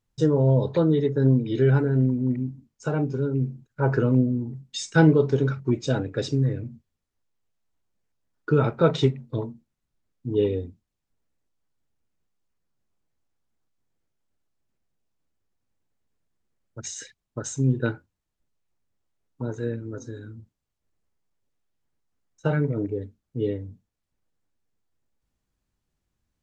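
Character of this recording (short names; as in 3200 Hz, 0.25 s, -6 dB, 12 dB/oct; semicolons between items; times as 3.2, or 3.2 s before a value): noise floor -82 dBFS; spectral tilt -7.5 dB/oct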